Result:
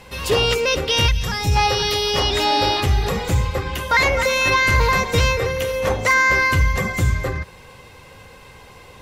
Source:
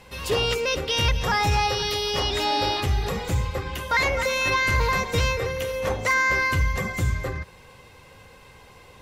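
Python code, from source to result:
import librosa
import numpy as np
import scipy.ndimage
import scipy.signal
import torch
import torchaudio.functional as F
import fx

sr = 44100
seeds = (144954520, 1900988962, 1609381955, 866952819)

y = fx.peak_eq(x, sr, hz=fx.line((1.06, 430.0), (1.55, 1500.0)), db=-12.5, octaves=2.7, at=(1.06, 1.55), fade=0.02)
y = y * librosa.db_to_amplitude(5.5)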